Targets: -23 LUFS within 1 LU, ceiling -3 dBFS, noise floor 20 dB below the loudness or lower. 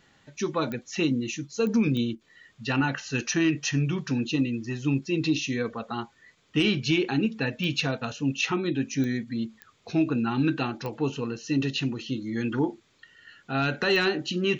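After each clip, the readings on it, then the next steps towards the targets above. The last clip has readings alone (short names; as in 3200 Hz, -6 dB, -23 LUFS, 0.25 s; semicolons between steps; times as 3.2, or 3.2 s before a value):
clicks 8; loudness -27.5 LUFS; peak -13.5 dBFS; loudness target -23.0 LUFS
-> de-click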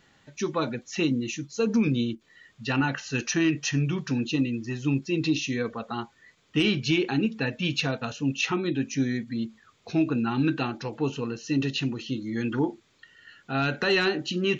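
clicks 0; loudness -27.5 LUFS; peak -13.5 dBFS; loudness target -23.0 LUFS
-> gain +4.5 dB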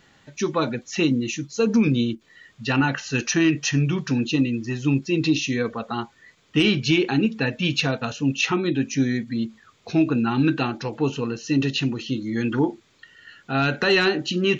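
loudness -23.0 LUFS; peak -9.0 dBFS; noise floor -60 dBFS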